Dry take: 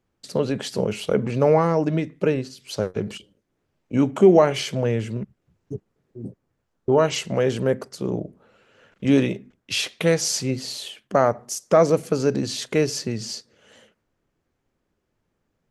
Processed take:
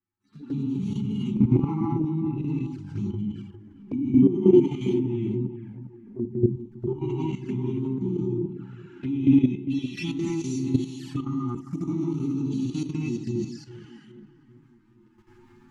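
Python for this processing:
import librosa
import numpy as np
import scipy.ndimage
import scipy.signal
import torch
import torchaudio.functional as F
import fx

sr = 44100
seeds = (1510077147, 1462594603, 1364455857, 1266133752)

p1 = fx.hpss_only(x, sr, part='harmonic')
p2 = fx.recorder_agc(p1, sr, target_db=-10.5, rise_db_per_s=11.0, max_gain_db=30)
p3 = scipy.signal.sosfilt(scipy.signal.cheby1(4, 1.0, [360.0, 850.0], 'bandstop', fs=sr, output='sos'), p2)
p4 = fx.low_shelf(p3, sr, hz=150.0, db=-3.0)
p5 = fx.rev_gated(p4, sr, seeds[0], gate_ms=280, shape='rising', drr_db=-7.5)
p6 = fx.level_steps(p5, sr, step_db=12)
p7 = fx.peak_eq(p6, sr, hz=470.0, db=7.5, octaves=2.1)
p8 = p7 + fx.echo_filtered(p7, sr, ms=403, feedback_pct=48, hz=1400.0, wet_db=-10, dry=0)
p9 = fx.env_flanger(p8, sr, rest_ms=10.7, full_db=-19.5)
p10 = fx.lowpass(p9, sr, hz=3600.0, slope=6)
y = F.gain(torch.from_numpy(p10), -6.5).numpy()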